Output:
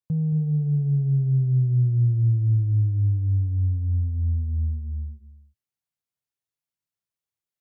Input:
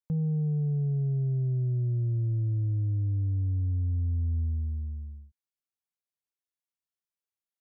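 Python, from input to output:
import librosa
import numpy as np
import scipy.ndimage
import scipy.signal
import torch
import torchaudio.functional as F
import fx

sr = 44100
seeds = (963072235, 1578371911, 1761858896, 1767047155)

y = fx.rider(x, sr, range_db=3, speed_s=0.5)
y = fx.peak_eq(y, sr, hz=120.0, db=10.5, octaves=1.1)
y = y + 10.0 ** (-11.0 / 20.0) * np.pad(y, (int(224 * sr / 1000.0), 0))[:len(y)]
y = y * librosa.db_to_amplitude(-2.5)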